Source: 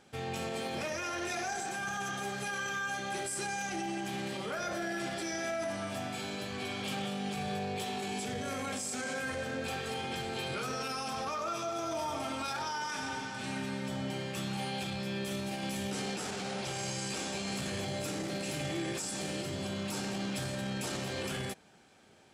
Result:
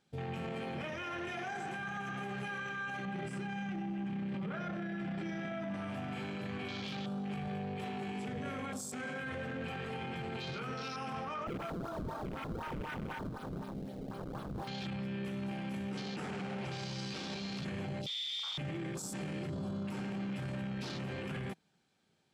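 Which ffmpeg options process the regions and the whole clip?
-filter_complex "[0:a]asettb=1/sr,asplit=3[s0][s1][s2];[s0]atrim=end=3.054[s3];[s1]atrim=start=3.05:end=5.74,asetpts=PTS-STARTPTS,afade=t=in:d=0.004:c=qsin,afade=t=out:st=2.686:d=0.004:c=qsin,adynamicsmooth=sensitivity=6:basefreq=5900,equalizer=f=180:t=o:w=0.5:g=13.5[s4];[s2]atrim=start=5.736[s5];[s3][s4]acrossfade=d=0.004:c1=hsin:c2=qsin[s6];[s6][s5]acrossfade=d=0.004:c1=qsin:c2=hsin,asettb=1/sr,asplit=3[s7][s8][s9];[s7]atrim=end=11.474[s10];[s8]atrim=start=11.47:end=14.68,asetpts=PTS-STARTPTS,afade=t=in:d=0.004:c=qsin,afade=t=out:st=3.206:d=0.004:c=qsin,highpass=f=820:p=1,acrusher=samples=29:mix=1:aa=0.000001:lfo=1:lforange=46.4:lforate=4[s11];[s9]atrim=start=14.676[s12];[s10][s11]acrossfade=d=0.004:c1=hsin:c2=qsin[s13];[s13][s12]acrossfade=d=0.004:c1=qsin:c2=hsin,asettb=1/sr,asplit=3[s14][s15][s16];[s14]atrim=end=18.064[s17];[s15]atrim=start=18.06:end=18.58,asetpts=PTS-STARTPTS,afade=t=in:d=0.004:c=qsin,afade=t=out:st=0.516:d=0.004:c=qsin,lowpass=f=3200:t=q:w=0.5098,lowpass=f=3200:t=q:w=0.6013,lowpass=f=3200:t=q:w=0.9,lowpass=f=3200:t=q:w=2.563,afreqshift=-3800,asoftclip=type=hard:threshold=0.0126[s18];[s16]atrim=start=18.576[s19];[s17][s18]acrossfade=d=0.004:c1=hsin:c2=qsin[s20];[s20][s19]acrossfade=d=0.004:c1=qsin:c2=hsin,afwtdn=0.00794,equalizer=f=160:t=o:w=0.67:g=8,equalizer=f=630:t=o:w=0.67:g=-3,equalizer=f=4000:t=o:w=0.67:g=5,alimiter=level_in=2.99:limit=0.0631:level=0:latency=1:release=14,volume=0.335,volume=1.12"

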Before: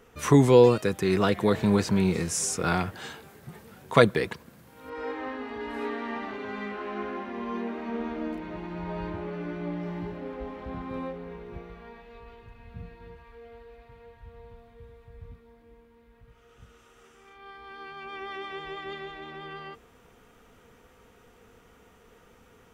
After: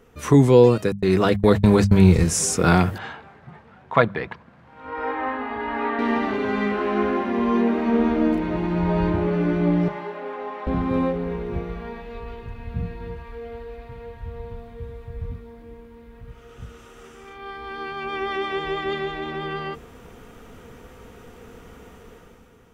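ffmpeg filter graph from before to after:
-filter_complex "[0:a]asettb=1/sr,asplit=3[s0][s1][s2];[s0]atrim=end=0.924[s3];[s1]atrim=start=0.92:end=2.24,asetpts=PTS-STARTPTS,afade=t=in:d=0.004:c=qsin,afade=t=out:st=1.316:d=0.004:c=qsin,agate=range=0.00794:threshold=0.0316:ratio=16:release=100:detection=peak,asubboost=boost=10:cutoff=100[s4];[s2]atrim=start=2.236[s5];[s3][s4]acrossfade=d=0.004:c1=hsin:c2=qsin[s6];[s6][s5]acrossfade=d=0.004:c1=qsin:c2=hsin,asettb=1/sr,asplit=3[s7][s8][s9];[s7]atrim=end=2.984[s10];[s8]atrim=start=2.98:end=5.99,asetpts=PTS-STARTPTS,afade=t=in:d=0.004:c=qsin,afade=t=out:st=3.006:d=0.004:c=qsin,lowpass=2400,lowshelf=f=570:t=q:w=1.5:g=-7[s11];[s9]atrim=start=5.986[s12];[s10][s11]acrossfade=d=0.004:c1=hsin:c2=qsin[s13];[s13][s12]acrossfade=d=0.004:c1=qsin:c2=hsin,asettb=1/sr,asplit=3[s14][s15][s16];[s14]atrim=end=9.884[s17];[s15]atrim=start=9.88:end=10.67,asetpts=PTS-STARTPTS,afade=t=in:d=0.004:c=qsin,afade=t=out:st=0.786:d=0.004:c=qsin,highpass=670,highshelf=f=4000:g=-9.5,aecho=1:1:4.9:0.48,atrim=end_sample=34839[s18];[s16]atrim=start=10.666[s19];[s17][s18]acrossfade=d=0.004:c1=hsin:c2=qsin[s20];[s20][s19]acrossfade=d=0.004:c1=qsin:c2=hsin,lowshelf=f=440:g=6.5,bandreject=f=50:t=h:w=6,bandreject=f=100:t=h:w=6,bandreject=f=150:t=h:w=6,bandreject=f=200:t=h:w=6,dynaudnorm=f=100:g=13:m=3.16,volume=0.891"

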